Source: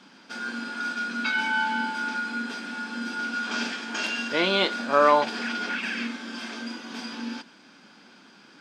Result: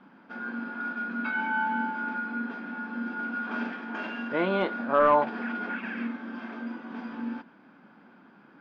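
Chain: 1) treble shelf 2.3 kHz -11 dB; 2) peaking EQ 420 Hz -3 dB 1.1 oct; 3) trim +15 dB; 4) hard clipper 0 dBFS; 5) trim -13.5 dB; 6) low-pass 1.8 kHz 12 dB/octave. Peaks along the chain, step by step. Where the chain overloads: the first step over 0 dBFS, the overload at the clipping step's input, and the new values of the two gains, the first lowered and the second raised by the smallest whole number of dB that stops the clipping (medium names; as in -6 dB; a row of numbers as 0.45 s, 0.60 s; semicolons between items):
-8.5 dBFS, -9.0 dBFS, +6.0 dBFS, 0.0 dBFS, -13.5 dBFS, -13.0 dBFS; step 3, 6.0 dB; step 3 +9 dB, step 5 -7.5 dB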